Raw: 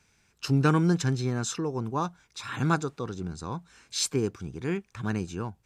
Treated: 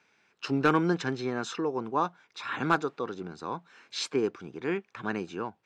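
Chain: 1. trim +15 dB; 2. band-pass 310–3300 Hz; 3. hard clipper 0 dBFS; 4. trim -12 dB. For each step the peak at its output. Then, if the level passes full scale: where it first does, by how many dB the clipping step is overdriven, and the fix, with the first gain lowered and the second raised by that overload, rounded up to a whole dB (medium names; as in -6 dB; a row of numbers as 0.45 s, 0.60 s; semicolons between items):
+4.0 dBFS, +4.0 dBFS, 0.0 dBFS, -12.0 dBFS; step 1, 4.0 dB; step 1 +11 dB, step 4 -8 dB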